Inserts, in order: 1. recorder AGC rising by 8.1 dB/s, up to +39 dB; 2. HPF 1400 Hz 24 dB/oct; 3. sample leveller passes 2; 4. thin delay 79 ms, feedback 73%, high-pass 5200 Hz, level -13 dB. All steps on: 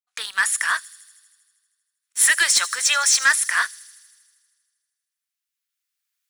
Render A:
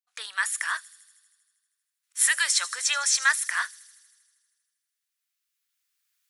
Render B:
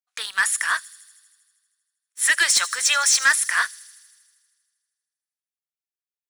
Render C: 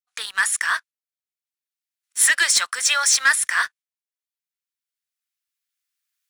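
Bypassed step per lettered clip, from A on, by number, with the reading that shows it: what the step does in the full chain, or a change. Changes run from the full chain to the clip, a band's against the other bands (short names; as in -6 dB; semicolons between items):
3, crest factor change +6.0 dB; 1, momentary loudness spread change -2 LU; 4, echo-to-direct -27.5 dB to none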